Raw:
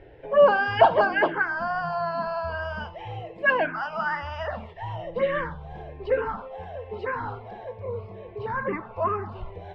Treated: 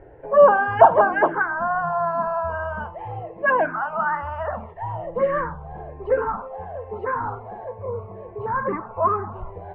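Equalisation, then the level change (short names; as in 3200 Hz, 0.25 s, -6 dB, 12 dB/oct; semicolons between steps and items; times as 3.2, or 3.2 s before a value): synth low-pass 1200 Hz, resonance Q 1.6; +2.0 dB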